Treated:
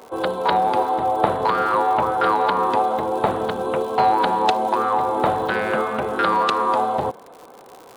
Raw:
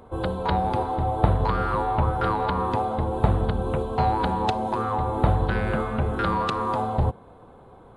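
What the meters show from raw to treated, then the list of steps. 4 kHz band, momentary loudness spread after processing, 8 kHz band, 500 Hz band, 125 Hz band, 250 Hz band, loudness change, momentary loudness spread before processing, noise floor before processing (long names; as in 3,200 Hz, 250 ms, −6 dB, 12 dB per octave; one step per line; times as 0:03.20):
+7.0 dB, 5 LU, can't be measured, +6.0 dB, −12.0 dB, 0.0 dB, +4.5 dB, 4 LU, −49 dBFS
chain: high-pass filter 350 Hz 12 dB per octave
surface crackle 140 per second −39 dBFS
level +7 dB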